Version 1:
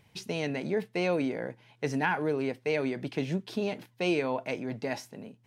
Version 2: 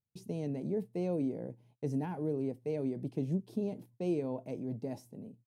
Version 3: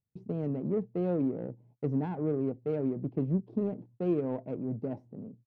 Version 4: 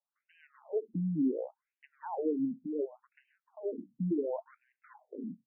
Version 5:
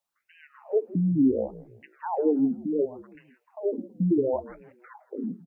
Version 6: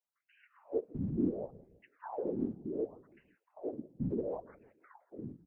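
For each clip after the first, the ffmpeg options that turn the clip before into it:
-af "agate=range=-29dB:threshold=-56dB:ratio=16:detection=peak,firequalizer=gain_entry='entry(120,0);entry(1500,-25);entry(9400,-7)':delay=0.05:min_phase=1"
-af "adynamicsmooth=sensitivity=3:basefreq=910,volume=4dB"
-af "acompressor=threshold=-31dB:ratio=4,afftfilt=real='re*between(b*sr/1024,200*pow(2200/200,0.5+0.5*sin(2*PI*0.69*pts/sr))/1.41,200*pow(2200/200,0.5+0.5*sin(2*PI*0.69*pts/sr))*1.41)':imag='im*between(b*sr/1024,200*pow(2200/200,0.5+0.5*sin(2*PI*0.69*pts/sr))/1.41,200*pow(2200/200,0.5+0.5*sin(2*PI*0.69*pts/sr))*1.41)':win_size=1024:overlap=0.75,volume=6.5dB"
-filter_complex "[0:a]asplit=4[a][b][c][d];[b]adelay=163,afreqshift=-50,volume=-19dB[e];[c]adelay=326,afreqshift=-100,volume=-26.3dB[f];[d]adelay=489,afreqshift=-150,volume=-33.7dB[g];[a][e][f][g]amix=inputs=4:normalize=0,volume=8.5dB"
-af "afftfilt=real='hypot(re,im)*cos(2*PI*random(0))':imag='hypot(re,im)*sin(2*PI*random(1))':win_size=512:overlap=0.75,volume=-5.5dB"

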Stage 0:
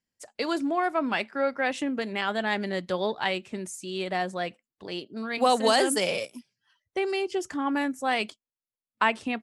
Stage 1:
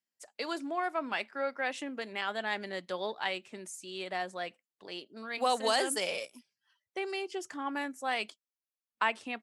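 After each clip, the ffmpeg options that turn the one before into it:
-af "highpass=f=490:p=1,volume=-5dB"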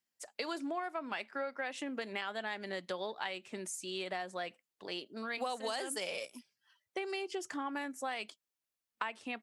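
-af "acompressor=threshold=-38dB:ratio=6,volume=3dB"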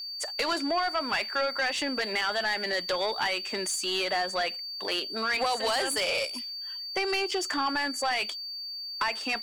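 -filter_complex "[0:a]asplit=2[a][b];[b]highpass=f=720:p=1,volume=23dB,asoftclip=type=tanh:threshold=-18dB[c];[a][c]amix=inputs=2:normalize=0,lowpass=f=6.6k:p=1,volume=-6dB,aeval=exprs='val(0)+0.02*sin(2*PI*4600*n/s)':c=same,aeval=exprs='sgn(val(0))*max(abs(val(0))-0.00158,0)':c=same"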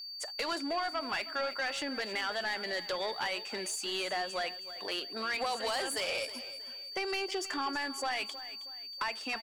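-af "aecho=1:1:318|636|954:0.178|0.0658|0.0243,volume=-6dB"

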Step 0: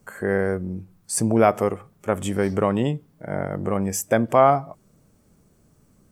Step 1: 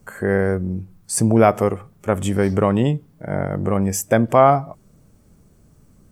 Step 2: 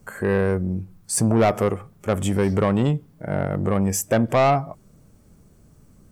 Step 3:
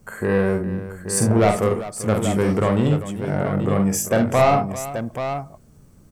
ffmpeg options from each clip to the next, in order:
-af "lowshelf=f=120:g=8,volume=2.5dB"
-af "asoftclip=type=tanh:threshold=-12dB"
-af "aecho=1:1:47|71|392|831:0.562|0.251|0.2|0.376"

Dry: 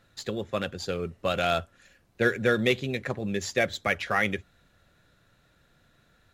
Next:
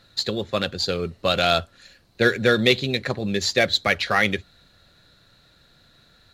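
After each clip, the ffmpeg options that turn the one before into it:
-af "equalizer=f=4.2k:w=3.1:g=13.5,volume=5dB"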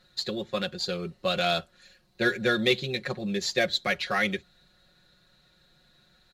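-af "aecho=1:1:5.5:0.72,volume=-8dB"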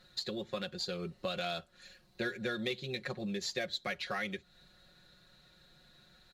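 -af "acompressor=threshold=-37dB:ratio=3"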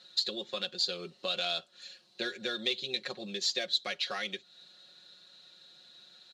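-af "highpass=270,lowpass=4.5k,aexciter=amount=3.3:drive=6.9:freq=2.9k"

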